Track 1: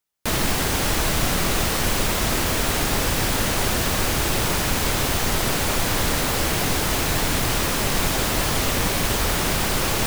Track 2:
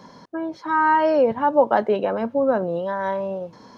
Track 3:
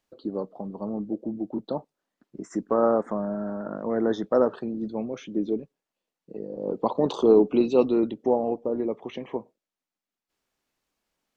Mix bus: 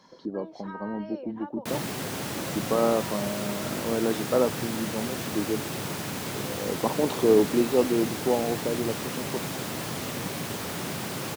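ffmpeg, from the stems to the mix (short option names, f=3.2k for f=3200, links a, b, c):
-filter_complex "[0:a]highpass=f=120:w=0.5412,highpass=f=120:w=1.3066,lowshelf=f=420:g=7,adelay=1400,volume=-12dB[a];[1:a]equalizer=f=4.7k:w=0.32:g=9.5,acompressor=threshold=-25dB:ratio=6,volume=-15dB[b];[2:a]volume=-2dB[c];[a][b][c]amix=inputs=3:normalize=0"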